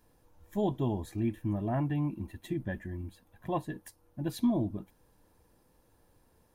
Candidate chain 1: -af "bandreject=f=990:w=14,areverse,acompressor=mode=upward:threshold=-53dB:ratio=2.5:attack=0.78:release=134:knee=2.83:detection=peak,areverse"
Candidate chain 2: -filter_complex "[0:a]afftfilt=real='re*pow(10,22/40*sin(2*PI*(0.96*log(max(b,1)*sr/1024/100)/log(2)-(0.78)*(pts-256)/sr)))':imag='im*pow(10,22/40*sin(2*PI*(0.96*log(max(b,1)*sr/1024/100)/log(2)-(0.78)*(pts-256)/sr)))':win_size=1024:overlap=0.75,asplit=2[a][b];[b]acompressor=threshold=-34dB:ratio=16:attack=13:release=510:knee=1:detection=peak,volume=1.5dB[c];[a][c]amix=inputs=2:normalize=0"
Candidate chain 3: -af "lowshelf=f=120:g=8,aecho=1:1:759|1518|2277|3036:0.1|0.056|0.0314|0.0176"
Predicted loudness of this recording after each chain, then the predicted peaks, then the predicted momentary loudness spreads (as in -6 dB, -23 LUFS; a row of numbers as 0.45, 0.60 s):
-34.0, -28.0, -32.0 LUFS; -19.5, -10.0, -17.0 dBFS; 14, 12, 18 LU